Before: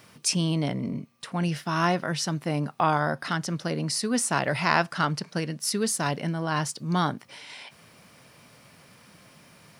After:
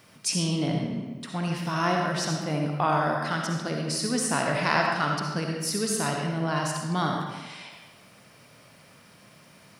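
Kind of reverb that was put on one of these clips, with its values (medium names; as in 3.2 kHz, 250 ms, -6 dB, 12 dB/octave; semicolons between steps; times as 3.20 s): algorithmic reverb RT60 1.2 s, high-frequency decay 0.8×, pre-delay 25 ms, DRR 0.5 dB; trim -2.5 dB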